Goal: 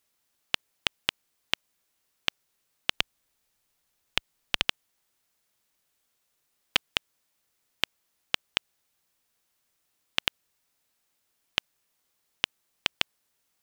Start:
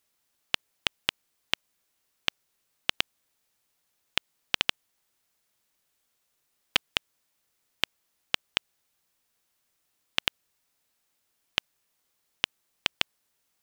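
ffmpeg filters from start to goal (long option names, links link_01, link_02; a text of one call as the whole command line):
ffmpeg -i in.wav -filter_complex "[0:a]asettb=1/sr,asplit=3[link_01][link_02][link_03];[link_01]atrim=end=2.914[link_04];[link_02]atrim=start=2.91:end=4.69,asetpts=PTS-STARTPTS,afade=type=in:duration=0.004:curve=qsin,afade=type=out:start_time=1.776:duration=0.004:curve=qsin,lowshelf=frequency=61:gain=11[link_05];[link_03]atrim=start=4.686[link_06];[link_04][link_05]acrossfade=duration=0.004:curve1=hsin:curve2=qsin[link_07];[link_07][link_06]acrossfade=duration=0.004:curve1=qsin:curve2=hsin" out.wav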